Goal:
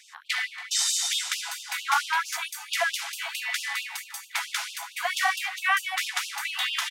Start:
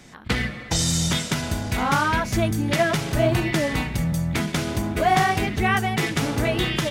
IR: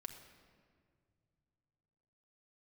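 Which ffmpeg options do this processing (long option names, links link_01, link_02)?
-af "aecho=1:1:280|560|840|1120:0.126|0.0617|0.0302|0.0148,afftfilt=real='re*gte(b*sr/1024,680*pow(2600/680,0.5+0.5*sin(2*PI*4.5*pts/sr)))':imag='im*gte(b*sr/1024,680*pow(2600/680,0.5+0.5*sin(2*PI*4.5*pts/sr)))':win_size=1024:overlap=0.75"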